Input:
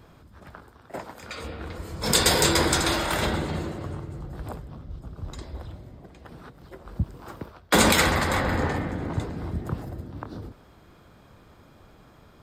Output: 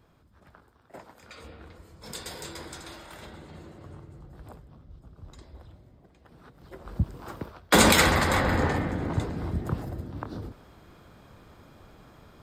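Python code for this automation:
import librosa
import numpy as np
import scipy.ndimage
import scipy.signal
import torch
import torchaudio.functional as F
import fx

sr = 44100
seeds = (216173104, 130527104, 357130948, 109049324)

y = fx.gain(x, sr, db=fx.line((1.55, -10.0), (2.22, -19.5), (3.31, -19.5), (3.96, -10.5), (6.3, -10.5), (6.82, 0.5)))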